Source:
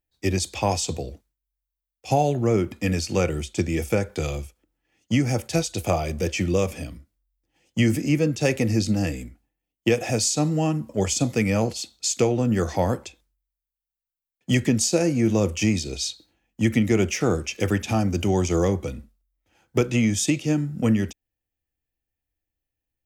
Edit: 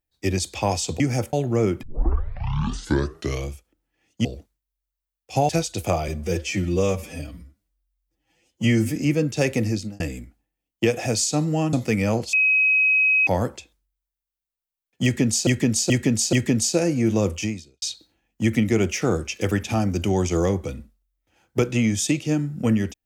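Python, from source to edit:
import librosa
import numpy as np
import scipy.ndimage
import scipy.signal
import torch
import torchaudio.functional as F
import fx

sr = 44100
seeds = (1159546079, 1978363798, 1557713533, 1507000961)

y = fx.edit(x, sr, fx.swap(start_s=1.0, length_s=1.24, other_s=5.16, other_length_s=0.33),
    fx.tape_start(start_s=2.74, length_s=1.68),
    fx.stretch_span(start_s=6.08, length_s=1.92, factor=1.5),
    fx.fade_out_span(start_s=8.67, length_s=0.37),
    fx.cut(start_s=10.77, length_s=0.44),
    fx.bleep(start_s=11.81, length_s=0.94, hz=2540.0, db=-15.0),
    fx.repeat(start_s=14.52, length_s=0.43, count=4),
    fx.fade_out_span(start_s=15.54, length_s=0.47, curve='qua'), tone=tone)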